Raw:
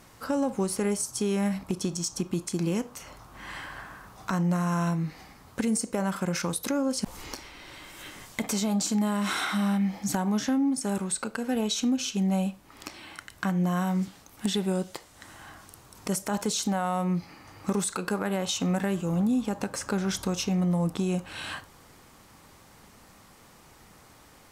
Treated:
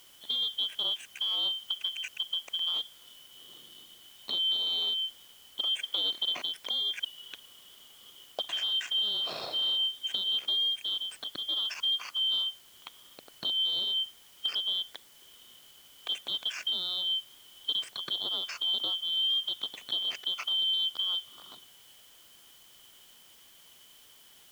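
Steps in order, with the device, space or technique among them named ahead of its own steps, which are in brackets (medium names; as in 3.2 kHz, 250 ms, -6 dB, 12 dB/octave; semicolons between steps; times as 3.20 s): local Wiener filter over 41 samples; split-band scrambled radio (four frequency bands reordered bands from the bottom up 2413; band-pass 310–3000 Hz; white noise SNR 24 dB); 5.77–6.33 s: graphic EQ 125/500/2000 Hz -6/+4/+6 dB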